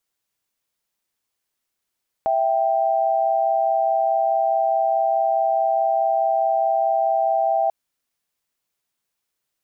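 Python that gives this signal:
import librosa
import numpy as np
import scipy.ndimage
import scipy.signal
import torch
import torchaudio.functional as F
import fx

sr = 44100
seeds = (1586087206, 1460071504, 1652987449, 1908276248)

y = fx.chord(sr, length_s=5.44, notes=(76, 79), wave='sine', level_db=-19.5)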